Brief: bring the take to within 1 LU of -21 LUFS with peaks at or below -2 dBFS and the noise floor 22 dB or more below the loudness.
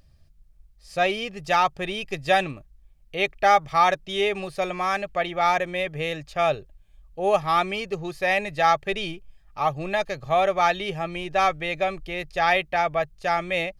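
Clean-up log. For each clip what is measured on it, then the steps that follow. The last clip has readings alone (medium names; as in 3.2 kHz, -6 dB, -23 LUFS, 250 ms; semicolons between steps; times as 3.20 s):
loudness -24.0 LUFS; peak level -6.0 dBFS; loudness target -21.0 LUFS
-> trim +3 dB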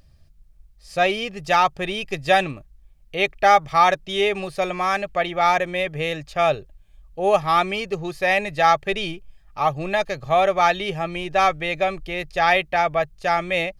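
loudness -21.0 LUFS; peak level -3.0 dBFS; noise floor -52 dBFS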